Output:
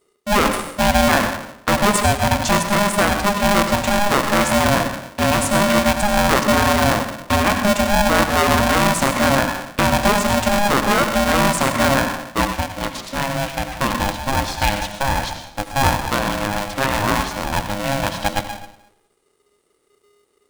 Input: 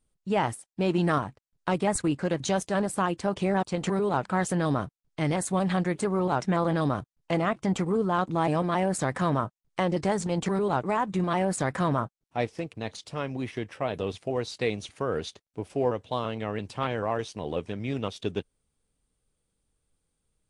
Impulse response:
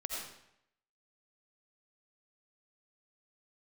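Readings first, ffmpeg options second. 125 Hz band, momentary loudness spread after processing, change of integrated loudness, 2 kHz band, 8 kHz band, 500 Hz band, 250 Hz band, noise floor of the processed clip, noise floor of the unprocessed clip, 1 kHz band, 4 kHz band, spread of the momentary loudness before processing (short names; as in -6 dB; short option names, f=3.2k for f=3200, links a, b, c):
+6.5 dB, 8 LU, +10.5 dB, +16.0 dB, +15.0 dB, +8.0 dB, +8.0 dB, -64 dBFS, -80 dBFS, +12.0 dB, +17.5 dB, 8 LU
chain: -filter_complex "[0:a]asplit=2[a][b];[1:a]atrim=start_sample=2205[c];[b][c]afir=irnorm=-1:irlink=0,volume=-0.5dB[d];[a][d]amix=inputs=2:normalize=0,aeval=exprs='val(0)*sgn(sin(2*PI*410*n/s))':c=same,volume=4.5dB"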